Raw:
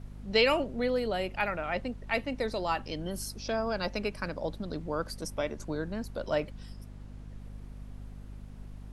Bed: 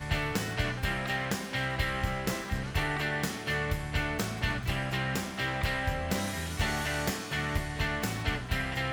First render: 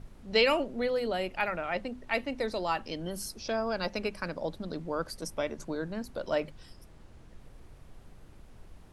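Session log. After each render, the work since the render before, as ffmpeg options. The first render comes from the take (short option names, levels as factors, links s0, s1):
-af "bandreject=f=50:t=h:w=6,bandreject=f=100:t=h:w=6,bandreject=f=150:t=h:w=6,bandreject=f=200:t=h:w=6,bandreject=f=250:t=h:w=6"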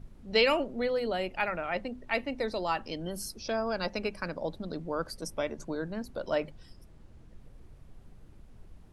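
-af "afftdn=nr=6:nf=-53"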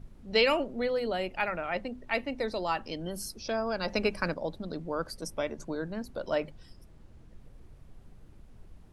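-filter_complex "[0:a]asplit=3[s0][s1][s2];[s0]atrim=end=3.882[s3];[s1]atrim=start=3.878:end=4.342,asetpts=PTS-STARTPTS,volume=1.78[s4];[s2]atrim=start=4.338[s5];[s3][s4]acrossfade=d=0.004:c1=hsin:c2=hsin[s6];[s6][s5]acrossfade=d=0.004:c1=hsin:c2=hsin"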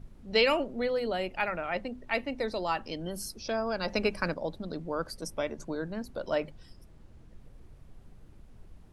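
-af anull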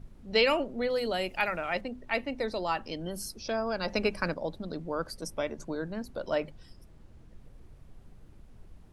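-filter_complex "[0:a]asettb=1/sr,asplit=3[s0][s1][s2];[s0]atrim=end=0.904[s3];[s1]atrim=start=0.9:end=1.81,asetpts=PTS-STARTPTS,afade=t=in:d=0.004:c=qsin,afade=t=out:st=0.906:d=0.004:c=qsin,highshelf=f=4000:g=11.5[s4];[s2]atrim=start=1.806[s5];[s3][s4]acrossfade=d=0.004:c1=hsin:c2=qsin[s6];[s6][s5]acrossfade=d=0.004:c1=qsin:c2=hsin"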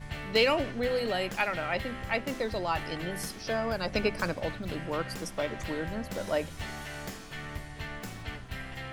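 -filter_complex "[1:a]volume=0.376[s0];[0:a][s0]amix=inputs=2:normalize=0"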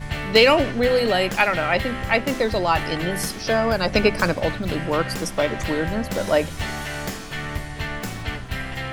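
-af "volume=3.35,alimiter=limit=0.794:level=0:latency=1"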